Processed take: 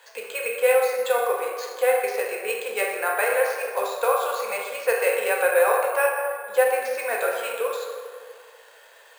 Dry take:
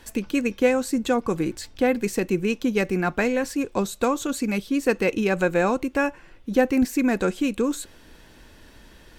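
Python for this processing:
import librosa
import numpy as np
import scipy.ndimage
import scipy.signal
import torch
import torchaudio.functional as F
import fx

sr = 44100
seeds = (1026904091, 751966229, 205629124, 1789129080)

y = scipy.signal.sosfilt(scipy.signal.ellip(4, 1.0, 40, 470.0, 'highpass', fs=sr, output='sos'), x)
y = fx.rev_plate(y, sr, seeds[0], rt60_s=1.9, hf_ratio=0.5, predelay_ms=0, drr_db=-2.0)
y = np.repeat(scipy.signal.resample_poly(y, 1, 4), 4)[:len(y)]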